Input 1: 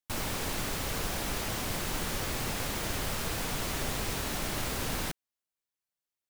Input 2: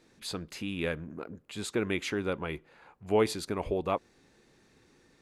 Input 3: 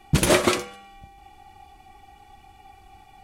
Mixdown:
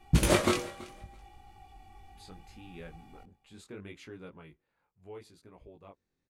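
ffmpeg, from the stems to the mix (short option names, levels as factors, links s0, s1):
-filter_complex "[1:a]adelay=1950,volume=0.211,afade=t=out:st=4.35:d=0.3:silence=0.446684[s0];[2:a]volume=0.596,asplit=2[s1][s2];[s2]volume=0.1,aecho=0:1:330|660|990:1|0.19|0.0361[s3];[s0][s1][s3]amix=inputs=3:normalize=0,lowshelf=f=150:g=9,flanger=delay=17:depth=6:speed=0.72"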